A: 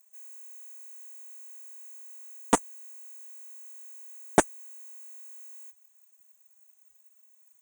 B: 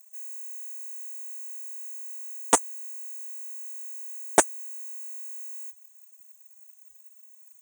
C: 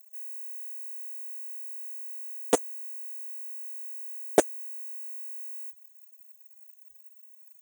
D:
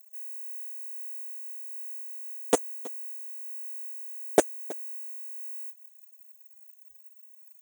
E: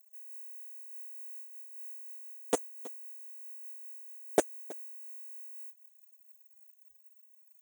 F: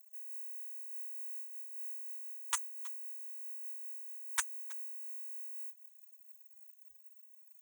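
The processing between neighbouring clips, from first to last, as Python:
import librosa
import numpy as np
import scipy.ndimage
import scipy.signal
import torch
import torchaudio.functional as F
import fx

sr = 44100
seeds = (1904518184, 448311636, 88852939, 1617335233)

y1 = fx.bass_treble(x, sr, bass_db=-14, treble_db=6)
y1 = y1 * librosa.db_to_amplitude(2.0)
y2 = fx.graphic_eq(y1, sr, hz=(500, 1000, 2000, 8000), db=(7, -11, -4, -11))
y3 = y2 + 10.0 ** (-19.5 / 20.0) * np.pad(y2, (int(322 * sr / 1000.0), 0))[:len(y2)]
y4 = fx.am_noise(y3, sr, seeds[0], hz=5.7, depth_pct=55)
y4 = y4 * librosa.db_to_amplitude(-4.5)
y5 = fx.brickwall_highpass(y4, sr, low_hz=920.0)
y5 = y5 * librosa.db_to_amplitude(2.0)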